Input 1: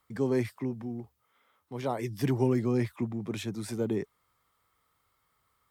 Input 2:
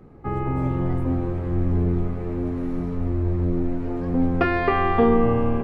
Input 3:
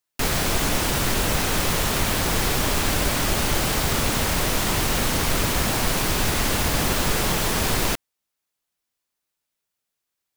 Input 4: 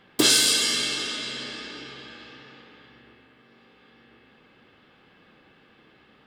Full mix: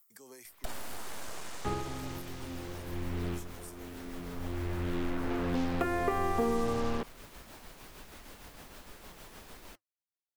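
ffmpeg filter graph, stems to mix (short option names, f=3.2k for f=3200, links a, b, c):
-filter_complex "[0:a]highpass=f=1.2k:p=1,highshelf=f=5.9k:g=11,aexciter=amount=2.4:drive=7.4:freq=5.4k,volume=-7.5dB,asplit=2[a][b];[1:a]acrusher=bits=4:mix=0:aa=0.5,adelay=1400,volume=-2dB[c];[2:a]equalizer=f=7.3k:t=o:w=2.1:g=-3,flanger=delay=3.1:depth=5:regen=-68:speed=1.4:shape=sinusoidal,adelay=1800,volume=-13.5dB[d];[3:a]acompressor=threshold=-25dB:ratio=6,aeval=exprs='abs(val(0))':c=same,adelay=450,volume=-6dB[e];[b]apad=whole_len=310230[f];[c][f]sidechaincompress=threshold=-53dB:ratio=4:attack=16:release=1030[g];[a][d]amix=inputs=2:normalize=0,tremolo=f=6.5:d=0.45,acompressor=threshold=-52dB:ratio=2,volume=0dB[h];[g][e][h]amix=inputs=3:normalize=0,acrossover=split=800|1600[i][j][k];[i]acompressor=threshold=-28dB:ratio=4[l];[j]acompressor=threshold=-39dB:ratio=4[m];[k]acompressor=threshold=-47dB:ratio=4[n];[l][m][n]amix=inputs=3:normalize=0,equalizer=f=120:t=o:w=1.4:g=-5"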